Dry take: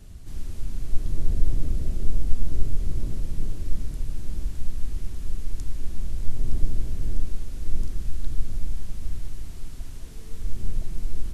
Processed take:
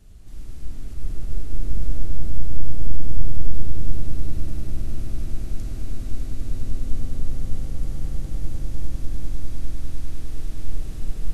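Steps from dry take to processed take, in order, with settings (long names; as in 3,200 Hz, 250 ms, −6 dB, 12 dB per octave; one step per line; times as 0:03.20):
brickwall limiter −15.5 dBFS, peak gain reduction 11 dB
echo that builds up and dies away 100 ms, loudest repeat 8, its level −7 dB
comb and all-pass reverb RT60 3 s, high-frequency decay 0.25×, pre-delay 15 ms, DRR −1 dB
level −5.5 dB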